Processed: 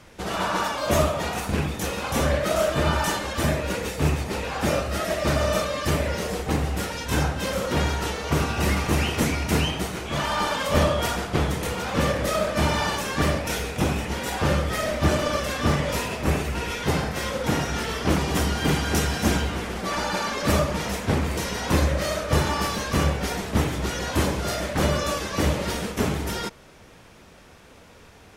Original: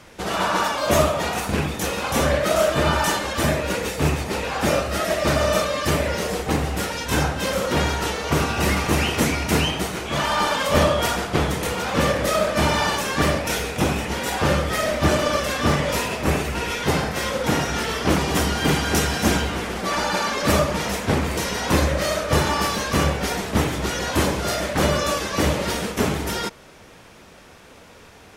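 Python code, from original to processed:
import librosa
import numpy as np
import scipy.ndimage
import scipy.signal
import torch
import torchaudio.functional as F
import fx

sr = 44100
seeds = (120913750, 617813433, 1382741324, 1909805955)

y = fx.low_shelf(x, sr, hz=160.0, db=5.0)
y = F.gain(torch.from_numpy(y), -4.0).numpy()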